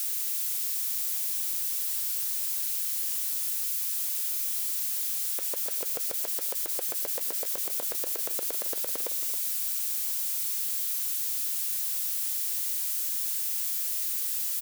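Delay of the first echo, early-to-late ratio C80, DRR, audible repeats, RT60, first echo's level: 234 ms, no reverb audible, no reverb audible, 2, no reverb audible, −20.0 dB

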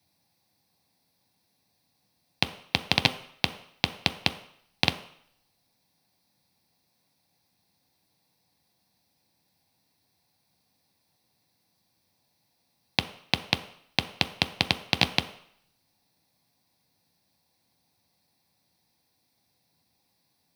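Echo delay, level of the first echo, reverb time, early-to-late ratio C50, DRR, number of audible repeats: no echo audible, no echo audible, 0.65 s, 13.5 dB, 7.5 dB, no echo audible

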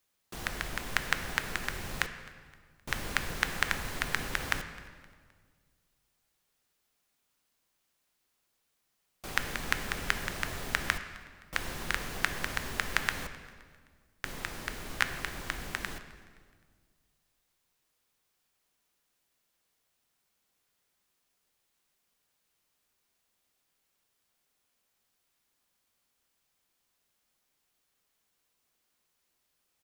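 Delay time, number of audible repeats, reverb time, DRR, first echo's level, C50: 260 ms, 2, 1.7 s, 8.0 dB, −22.5 dB, 9.5 dB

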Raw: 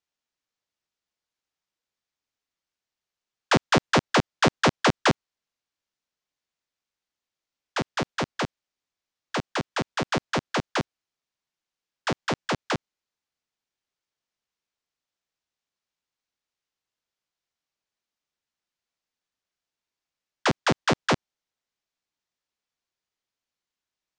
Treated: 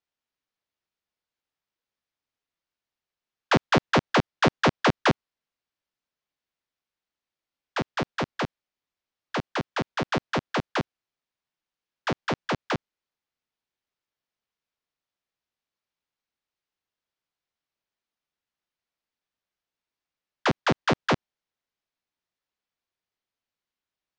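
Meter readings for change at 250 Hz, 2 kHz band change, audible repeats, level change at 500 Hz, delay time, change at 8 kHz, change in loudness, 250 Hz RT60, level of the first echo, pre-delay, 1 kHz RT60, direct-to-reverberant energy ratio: 0.0 dB, −1.0 dB, no echo audible, −0.5 dB, no echo audible, −7.0 dB, −0.5 dB, no reverb audible, no echo audible, no reverb audible, no reverb audible, no reverb audible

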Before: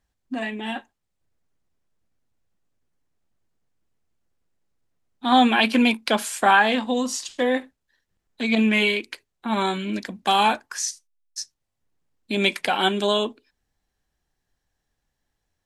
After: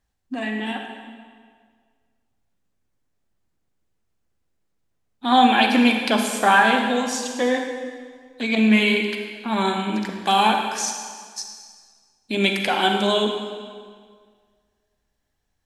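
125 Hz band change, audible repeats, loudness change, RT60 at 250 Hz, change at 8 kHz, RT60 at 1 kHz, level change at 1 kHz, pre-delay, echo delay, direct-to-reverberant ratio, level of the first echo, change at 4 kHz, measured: can't be measured, no echo audible, +1.5 dB, 1.9 s, +1.5 dB, 1.8 s, +2.5 dB, 36 ms, no echo audible, 3.5 dB, no echo audible, +1.5 dB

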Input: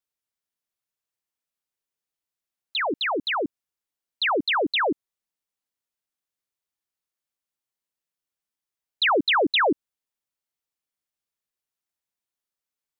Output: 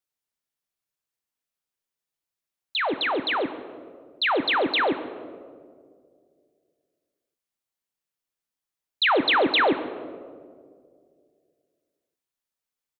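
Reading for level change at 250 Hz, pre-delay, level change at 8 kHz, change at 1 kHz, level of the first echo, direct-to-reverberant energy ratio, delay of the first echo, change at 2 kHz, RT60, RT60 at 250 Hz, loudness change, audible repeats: +0.5 dB, 6 ms, can't be measured, +0.5 dB, −18.0 dB, 9.5 dB, 137 ms, +0.5 dB, 2.2 s, 2.5 s, 0.0 dB, 1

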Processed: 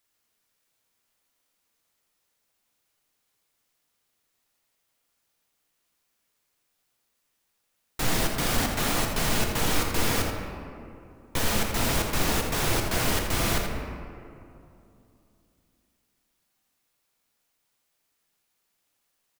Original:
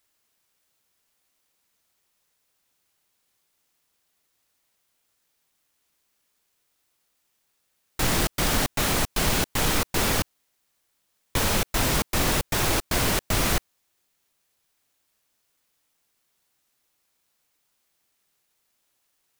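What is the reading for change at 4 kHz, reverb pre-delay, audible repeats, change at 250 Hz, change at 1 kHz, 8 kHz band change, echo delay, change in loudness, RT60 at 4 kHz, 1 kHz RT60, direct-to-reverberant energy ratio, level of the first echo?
−2.5 dB, 4 ms, 1, −1.0 dB, −1.5 dB, −3.0 dB, 83 ms, −2.5 dB, 1.2 s, 2.5 s, 1.5 dB, −8.0 dB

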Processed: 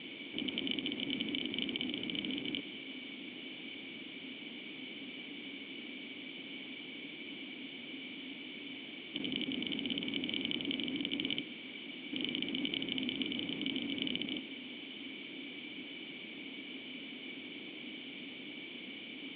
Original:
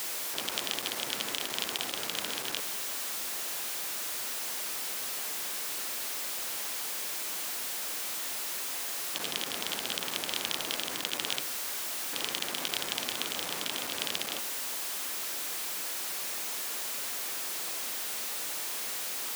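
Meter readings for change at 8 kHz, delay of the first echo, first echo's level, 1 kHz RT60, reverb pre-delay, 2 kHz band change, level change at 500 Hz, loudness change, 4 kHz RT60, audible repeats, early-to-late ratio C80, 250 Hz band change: below −40 dB, no echo audible, no echo audible, no reverb audible, no reverb audible, −4.5 dB, −5.0 dB, −7.5 dB, no reverb audible, no echo audible, no reverb audible, +9.0 dB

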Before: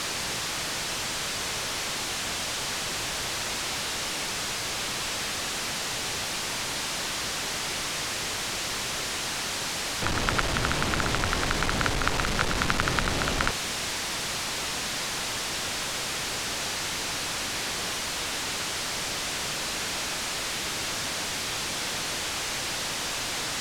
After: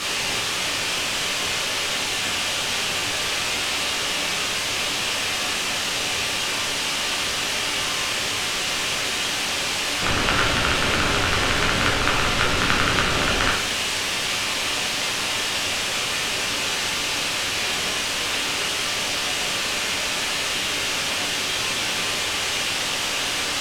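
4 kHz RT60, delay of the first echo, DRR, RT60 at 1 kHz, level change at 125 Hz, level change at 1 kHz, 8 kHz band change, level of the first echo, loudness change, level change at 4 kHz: 0.55 s, no echo audible, −3.5 dB, 0.65 s, +3.0 dB, +5.5 dB, +4.5 dB, no echo audible, +6.5 dB, +7.5 dB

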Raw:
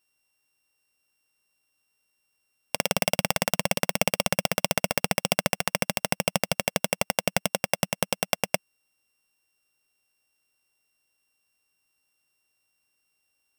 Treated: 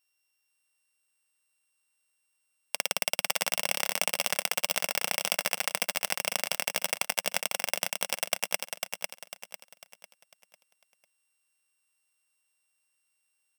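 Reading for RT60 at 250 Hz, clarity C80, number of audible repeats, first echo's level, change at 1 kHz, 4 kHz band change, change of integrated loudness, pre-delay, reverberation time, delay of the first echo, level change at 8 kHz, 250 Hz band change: no reverb audible, no reverb audible, 4, −5.0 dB, −5.5 dB, −1.0 dB, −3.0 dB, no reverb audible, no reverb audible, 499 ms, −0.5 dB, −16.5 dB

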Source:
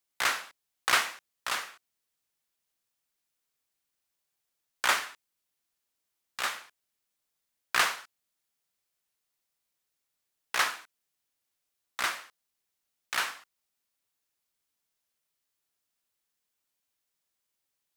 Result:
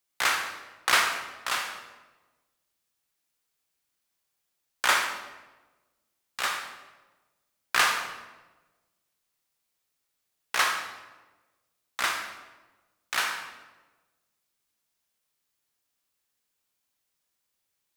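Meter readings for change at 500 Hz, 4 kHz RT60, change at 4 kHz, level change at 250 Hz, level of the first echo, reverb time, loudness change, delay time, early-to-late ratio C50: +3.5 dB, 0.85 s, +3.5 dB, +3.5 dB, no echo audible, 1.2 s, +2.5 dB, no echo audible, 6.0 dB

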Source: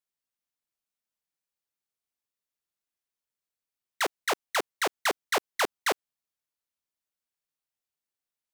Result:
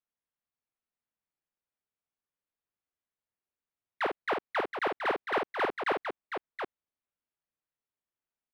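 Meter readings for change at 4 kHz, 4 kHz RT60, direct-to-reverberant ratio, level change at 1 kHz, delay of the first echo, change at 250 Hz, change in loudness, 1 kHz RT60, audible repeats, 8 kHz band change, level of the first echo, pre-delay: −10.0 dB, no reverb audible, no reverb audible, −0.5 dB, 50 ms, +1.0 dB, −3.5 dB, no reverb audible, 2, below −25 dB, −5.0 dB, no reverb audible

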